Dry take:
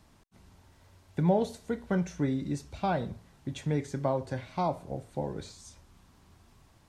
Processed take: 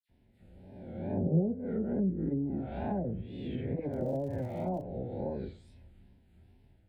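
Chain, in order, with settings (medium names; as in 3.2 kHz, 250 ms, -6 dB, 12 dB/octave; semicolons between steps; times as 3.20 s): reverse spectral sustain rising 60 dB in 1.35 s; treble shelf 2.1 kHz -11.5 dB; static phaser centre 2.7 kHz, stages 4; comb of notches 150 Hz; expander -54 dBFS; phase dispersion lows, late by 83 ms, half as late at 2.2 kHz; wow and flutter 110 cents; low-pass that closes with the level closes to 370 Hz, closed at -26.5 dBFS; 3.91–4.82 s: crackle 120 per s -46 dBFS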